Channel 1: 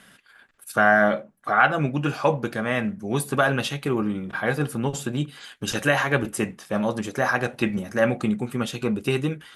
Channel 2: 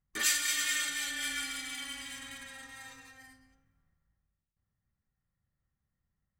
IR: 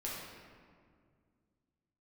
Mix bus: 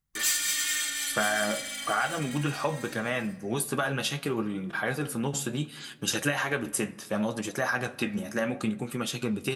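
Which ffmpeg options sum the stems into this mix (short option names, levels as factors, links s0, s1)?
-filter_complex "[0:a]highpass=93,acompressor=threshold=0.0794:ratio=6,flanger=delay=5.8:depth=8.5:regen=58:speed=0.7:shape=sinusoidal,adelay=400,volume=1.06,asplit=2[s0][s1];[s1]volume=0.112[s2];[1:a]asoftclip=type=tanh:threshold=0.0562,volume=0.891,asplit=2[s3][s4];[s4]volume=0.251[s5];[2:a]atrim=start_sample=2205[s6];[s2][s5]amix=inputs=2:normalize=0[s7];[s7][s6]afir=irnorm=-1:irlink=0[s8];[s0][s3][s8]amix=inputs=3:normalize=0,highshelf=f=3400:g=7"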